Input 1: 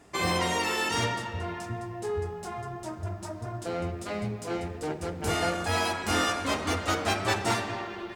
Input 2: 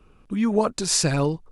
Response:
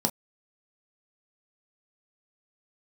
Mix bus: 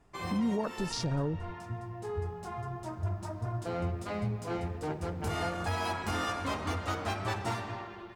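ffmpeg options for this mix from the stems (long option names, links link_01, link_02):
-filter_complex "[0:a]equalizer=frequency=125:width_type=o:width=1:gain=4,equalizer=frequency=1000:width_type=o:width=1:gain=5,equalizer=frequency=8000:width_type=o:width=1:gain=-3,dynaudnorm=framelen=810:gausssize=5:maxgain=8.5dB,volume=-13.5dB[link_01];[1:a]afwtdn=0.0562,volume=-4dB[link_02];[link_01][link_02]amix=inputs=2:normalize=0,lowshelf=frequency=140:gain=7.5,alimiter=limit=-23dB:level=0:latency=1:release=170"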